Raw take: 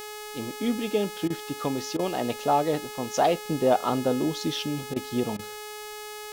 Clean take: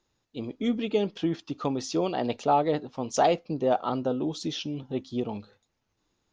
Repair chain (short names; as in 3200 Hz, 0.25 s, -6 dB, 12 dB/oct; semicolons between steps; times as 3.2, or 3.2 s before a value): de-hum 422.4 Hz, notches 39; interpolate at 1.28/1.97/4.94/5.37, 20 ms; expander -31 dBFS, range -21 dB; gain correction -3 dB, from 3.43